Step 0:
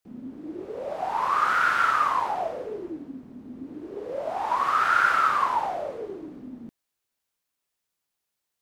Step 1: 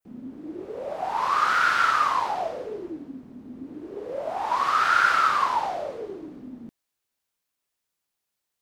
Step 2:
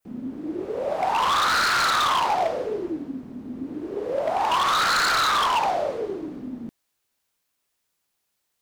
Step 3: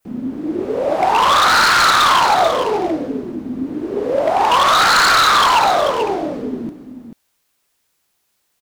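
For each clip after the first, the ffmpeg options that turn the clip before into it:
-af "adynamicequalizer=threshold=0.00794:dfrequency=4600:dqfactor=0.87:tfrequency=4600:tqfactor=0.87:attack=5:release=100:ratio=0.375:range=3.5:mode=boostabove:tftype=bell"
-filter_complex "[0:a]asplit=2[s0][s1];[s1]alimiter=limit=0.141:level=0:latency=1,volume=0.794[s2];[s0][s2]amix=inputs=2:normalize=0,aeval=exprs='0.141*(abs(mod(val(0)/0.141+3,4)-2)-1)':c=same,volume=1.12"
-af "aecho=1:1:438:0.355,volume=2.66"

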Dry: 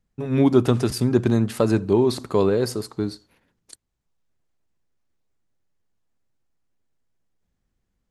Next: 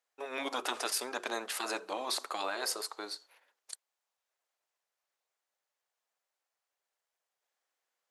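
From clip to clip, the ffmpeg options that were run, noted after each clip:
-af "highpass=f=580:w=0.5412,highpass=f=580:w=1.3066,afftfilt=real='re*lt(hypot(re,im),0.141)':imag='im*lt(hypot(re,im),0.141)':win_size=1024:overlap=0.75"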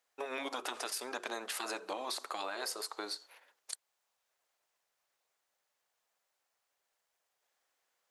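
-af "acompressor=threshold=0.00891:ratio=6,volume=1.78"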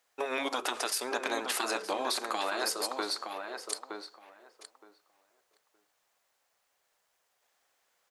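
-filter_complex "[0:a]asplit=2[s0][s1];[s1]adelay=918,lowpass=f=2100:p=1,volume=0.531,asplit=2[s2][s3];[s3]adelay=918,lowpass=f=2100:p=1,volume=0.16,asplit=2[s4][s5];[s5]adelay=918,lowpass=f=2100:p=1,volume=0.16[s6];[s0][s2][s4][s6]amix=inputs=4:normalize=0,volume=2.11"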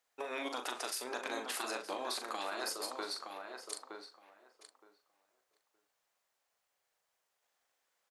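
-filter_complex "[0:a]asplit=2[s0][s1];[s1]adelay=40,volume=0.422[s2];[s0][s2]amix=inputs=2:normalize=0,volume=0.422"

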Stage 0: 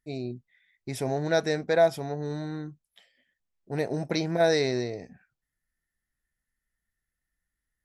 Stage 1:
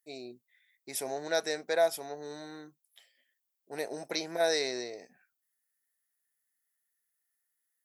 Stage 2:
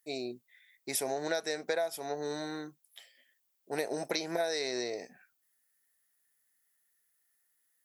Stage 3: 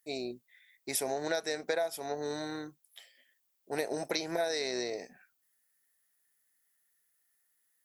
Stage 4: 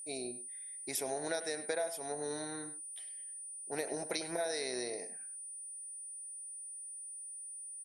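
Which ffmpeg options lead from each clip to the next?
-af "highpass=400,aemphasis=mode=production:type=50fm,volume=0.596"
-af "acompressor=threshold=0.0178:ratio=12,volume=2.11"
-af "tremolo=f=190:d=0.182,volume=1.12"
-filter_complex "[0:a]aeval=exprs='val(0)+0.0112*sin(2*PI*9300*n/s)':c=same,asplit=2[s0][s1];[s1]adelay=100,highpass=300,lowpass=3400,asoftclip=type=hard:threshold=0.0562,volume=0.282[s2];[s0][s2]amix=inputs=2:normalize=0,volume=0.596"

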